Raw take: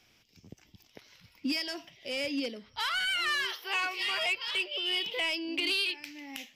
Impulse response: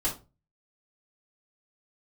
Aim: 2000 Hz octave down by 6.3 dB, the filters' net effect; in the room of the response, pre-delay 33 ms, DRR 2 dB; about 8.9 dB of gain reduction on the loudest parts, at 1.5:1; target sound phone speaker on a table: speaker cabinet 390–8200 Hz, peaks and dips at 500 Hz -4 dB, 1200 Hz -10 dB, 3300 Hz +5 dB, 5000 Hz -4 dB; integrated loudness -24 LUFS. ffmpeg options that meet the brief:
-filter_complex "[0:a]equalizer=f=2k:t=o:g=-8.5,acompressor=threshold=-54dB:ratio=1.5,asplit=2[a][b];[1:a]atrim=start_sample=2205,adelay=33[c];[b][c]afir=irnorm=-1:irlink=0,volume=-8.5dB[d];[a][d]amix=inputs=2:normalize=0,highpass=f=390:w=0.5412,highpass=f=390:w=1.3066,equalizer=f=500:t=q:w=4:g=-4,equalizer=f=1.2k:t=q:w=4:g=-10,equalizer=f=3.3k:t=q:w=4:g=5,equalizer=f=5k:t=q:w=4:g=-4,lowpass=f=8.2k:w=0.5412,lowpass=f=8.2k:w=1.3066,volume=15dB"

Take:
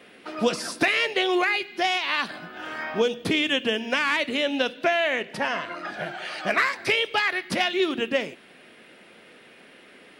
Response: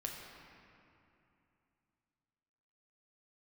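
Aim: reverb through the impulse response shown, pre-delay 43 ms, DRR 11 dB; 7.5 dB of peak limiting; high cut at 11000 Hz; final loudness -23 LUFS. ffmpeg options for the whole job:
-filter_complex "[0:a]lowpass=11k,alimiter=limit=-17.5dB:level=0:latency=1,asplit=2[a][b];[1:a]atrim=start_sample=2205,adelay=43[c];[b][c]afir=irnorm=-1:irlink=0,volume=-11dB[d];[a][d]amix=inputs=2:normalize=0,volume=5dB"

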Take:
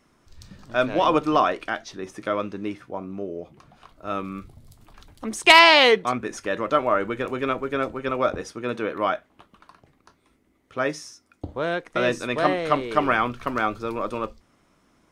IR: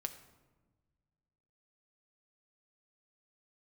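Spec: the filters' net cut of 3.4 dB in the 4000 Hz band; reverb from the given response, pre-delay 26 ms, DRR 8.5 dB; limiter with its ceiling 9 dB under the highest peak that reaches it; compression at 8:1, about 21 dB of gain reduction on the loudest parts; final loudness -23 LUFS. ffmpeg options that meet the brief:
-filter_complex "[0:a]equalizer=f=4k:t=o:g=-5,acompressor=threshold=-31dB:ratio=8,alimiter=level_in=2dB:limit=-24dB:level=0:latency=1,volume=-2dB,asplit=2[a][b];[1:a]atrim=start_sample=2205,adelay=26[c];[b][c]afir=irnorm=-1:irlink=0,volume=-7dB[d];[a][d]amix=inputs=2:normalize=0,volume=14.5dB"

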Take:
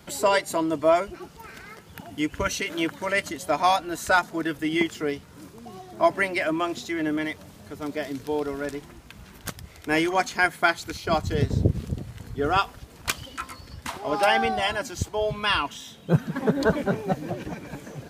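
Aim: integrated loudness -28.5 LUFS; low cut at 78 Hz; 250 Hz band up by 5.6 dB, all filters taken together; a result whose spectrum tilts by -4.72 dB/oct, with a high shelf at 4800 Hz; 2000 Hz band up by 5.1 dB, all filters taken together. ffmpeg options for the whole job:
-af "highpass=78,equalizer=f=250:t=o:g=8,equalizer=f=2k:t=o:g=6,highshelf=f=4.8k:g=3,volume=-6.5dB"

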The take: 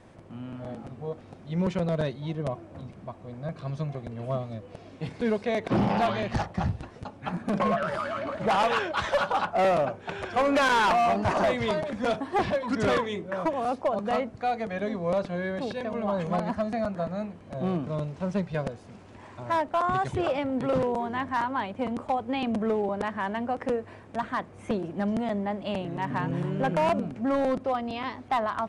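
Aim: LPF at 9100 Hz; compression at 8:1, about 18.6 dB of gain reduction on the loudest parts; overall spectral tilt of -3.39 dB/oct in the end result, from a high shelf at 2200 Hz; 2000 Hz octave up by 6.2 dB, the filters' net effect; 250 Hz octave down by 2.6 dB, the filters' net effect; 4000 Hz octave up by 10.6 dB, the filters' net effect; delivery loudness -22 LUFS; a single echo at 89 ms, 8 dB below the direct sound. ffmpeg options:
-af "lowpass=9.1k,equalizer=f=250:t=o:g=-3.5,equalizer=f=2k:t=o:g=3.5,highshelf=f=2.2k:g=6,equalizer=f=4k:t=o:g=7,acompressor=threshold=-35dB:ratio=8,aecho=1:1:89:0.398,volume=16dB"

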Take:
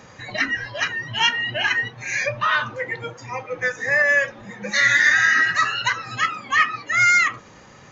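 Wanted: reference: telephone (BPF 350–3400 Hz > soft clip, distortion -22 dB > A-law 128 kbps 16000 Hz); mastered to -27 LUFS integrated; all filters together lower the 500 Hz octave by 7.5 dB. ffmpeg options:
-af "highpass=350,lowpass=3.4k,equalizer=f=500:t=o:g=-8,asoftclip=threshold=-9.5dB,volume=-6dB" -ar 16000 -c:a pcm_alaw

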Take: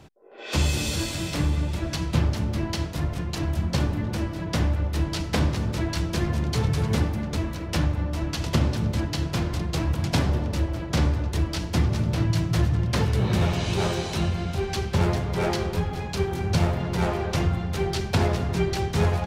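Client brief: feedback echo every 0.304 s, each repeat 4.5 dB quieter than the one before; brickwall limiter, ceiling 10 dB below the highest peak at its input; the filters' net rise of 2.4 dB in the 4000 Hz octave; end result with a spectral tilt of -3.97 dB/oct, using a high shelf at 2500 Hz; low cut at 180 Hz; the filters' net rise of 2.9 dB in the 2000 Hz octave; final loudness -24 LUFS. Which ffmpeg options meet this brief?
-af "highpass=180,equalizer=f=2k:t=o:g=5,highshelf=f=2.5k:g=-7,equalizer=f=4k:t=o:g=7.5,alimiter=limit=-20dB:level=0:latency=1,aecho=1:1:304|608|912|1216|1520|1824|2128|2432|2736:0.596|0.357|0.214|0.129|0.0772|0.0463|0.0278|0.0167|0.01,volume=5dB"

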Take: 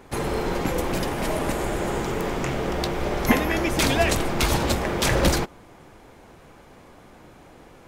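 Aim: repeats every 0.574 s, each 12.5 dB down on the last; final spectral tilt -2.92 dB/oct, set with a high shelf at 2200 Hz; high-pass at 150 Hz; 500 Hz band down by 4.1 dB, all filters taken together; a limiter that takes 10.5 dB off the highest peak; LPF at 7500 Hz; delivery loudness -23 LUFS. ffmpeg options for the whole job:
-af "highpass=150,lowpass=7.5k,equalizer=f=500:t=o:g=-6,highshelf=f=2.2k:g=8,alimiter=limit=-15dB:level=0:latency=1,aecho=1:1:574|1148|1722:0.237|0.0569|0.0137,volume=3dB"

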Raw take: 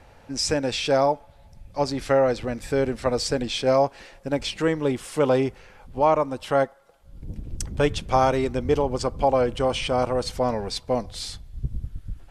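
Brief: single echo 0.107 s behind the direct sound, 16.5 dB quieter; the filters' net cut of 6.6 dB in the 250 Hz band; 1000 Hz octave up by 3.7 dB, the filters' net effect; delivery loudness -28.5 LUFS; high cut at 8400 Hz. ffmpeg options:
-af "lowpass=8.4k,equalizer=f=250:t=o:g=-8.5,equalizer=f=1k:t=o:g=5.5,aecho=1:1:107:0.15,volume=-5dB"

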